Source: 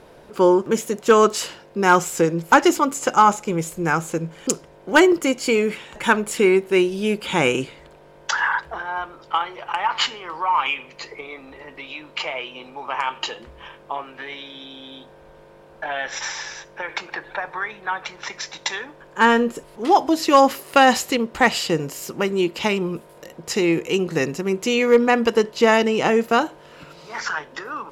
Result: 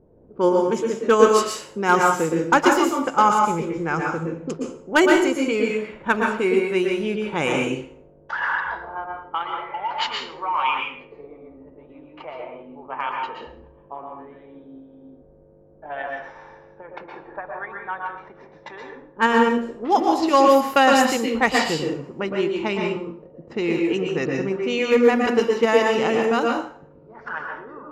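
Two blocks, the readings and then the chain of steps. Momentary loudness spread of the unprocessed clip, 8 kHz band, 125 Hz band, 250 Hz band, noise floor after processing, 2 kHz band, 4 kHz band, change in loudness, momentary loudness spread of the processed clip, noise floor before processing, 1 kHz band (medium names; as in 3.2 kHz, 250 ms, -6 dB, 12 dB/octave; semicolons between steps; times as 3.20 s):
18 LU, -5.0 dB, -2.5 dB, -1.0 dB, -51 dBFS, -2.0 dB, -3.5 dB, -0.5 dB, 20 LU, -48 dBFS, -1.0 dB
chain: in parallel at -2.5 dB: level held to a coarse grid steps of 13 dB; on the sum: level-controlled noise filter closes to 320 Hz, open at -11 dBFS; spectral replace 9.54–9.89 s, 1–2.7 kHz before; plate-style reverb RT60 0.51 s, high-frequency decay 0.85×, pre-delay 105 ms, DRR 0.5 dB; trim -7 dB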